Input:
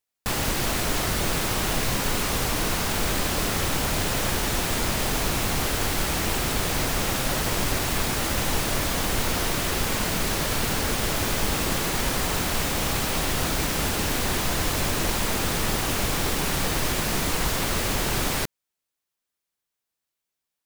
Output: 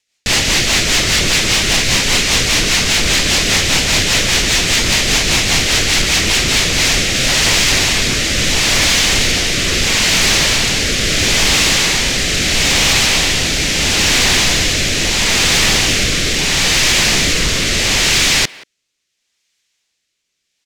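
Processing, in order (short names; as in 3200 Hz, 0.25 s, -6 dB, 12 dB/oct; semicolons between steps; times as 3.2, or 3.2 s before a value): LPF 11000 Hz 12 dB/oct; band shelf 3700 Hz +11 dB 2.3 oct; in parallel at -2.5 dB: limiter -16.5 dBFS, peak gain reduction 9 dB; on the sum: rotary speaker horn 5 Hz, later 0.75 Hz, at 6.34; soft clip -13.5 dBFS, distortion -17 dB; speakerphone echo 0.18 s, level -18 dB; gain +7.5 dB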